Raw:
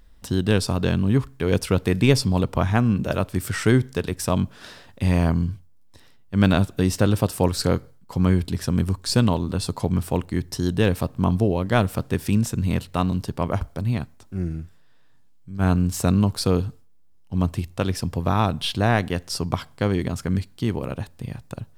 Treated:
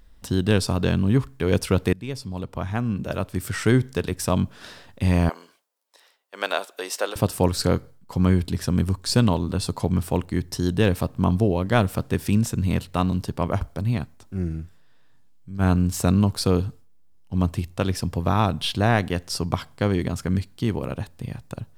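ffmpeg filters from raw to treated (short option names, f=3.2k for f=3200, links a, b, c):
-filter_complex "[0:a]asettb=1/sr,asplit=3[a][b][c];[a]atrim=end=5.294[d];[b]atrim=start=5.29:end=7.16,asetpts=PTS-STARTPTS,afade=t=in:d=0.004:c=qsin,afade=t=out:st=1.866:d=0.004:c=qsin,highpass=f=490:w=0.5412,highpass=f=490:w=1.3066[e];[c]atrim=start=7.156[f];[d][e]acrossfade=d=0.004:c1=hsin:c2=qsin[g];[g][f]acrossfade=d=0.004:c1=qsin:c2=hsin,asplit=2[h][i];[h]atrim=end=1.93,asetpts=PTS-STARTPTS,afade=t=out:st=1.926:d=0.004:c=hsin:silence=0.105925[j];[i]atrim=start=1.93,asetpts=PTS-STARTPTS,afade=t=in:d=2:silence=0.105925[k];[j][k]concat=n=2:v=0:a=1"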